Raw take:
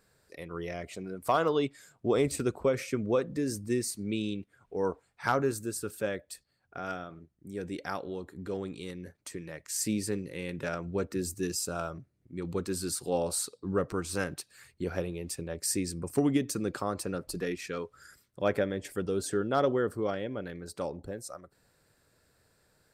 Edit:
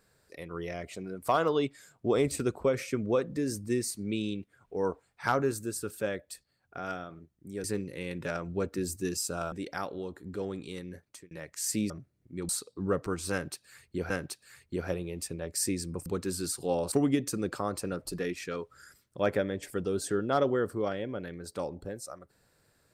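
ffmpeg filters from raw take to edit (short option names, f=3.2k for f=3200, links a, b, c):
-filter_complex "[0:a]asplit=9[a][b][c][d][e][f][g][h][i];[a]atrim=end=7.642[j];[b]atrim=start=10.018:end=11.902[k];[c]atrim=start=7.638:end=9.43,asetpts=PTS-STARTPTS,afade=t=out:st=1.502:d=0.29[l];[d]atrim=start=9.43:end=10.022,asetpts=PTS-STARTPTS,afade=t=in:d=0.004:c=hsin[m];[e]atrim=start=11.898:end=12.492[n];[f]atrim=start=13.348:end=14.962[o];[g]atrim=start=14.178:end=16.142[p];[h]atrim=start=12.488:end=13.352[q];[i]atrim=start=16.138[r];[j][k]acrossfade=d=0.004:c1=hsin:c2=hsin[s];[l][m]concat=n=2:v=0:a=1[t];[s][t]acrossfade=d=0.004:c1=hsin:c2=hsin[u];[u][n]acrossfade=d=0.004:c1=hsin:c2=hsin[v];[v][o]acrossfade=d=0.004:c1=hsin:c2=hsin[w];[w][p]acrossfade=d=0.004:c1=hsin:c2=hsin[x];[x][q]acrossfade=d=0.004:c1=hsin:c2=hsin[y];[y][r]acrossfade=d=0.004:c1=hsin:c2=hsin"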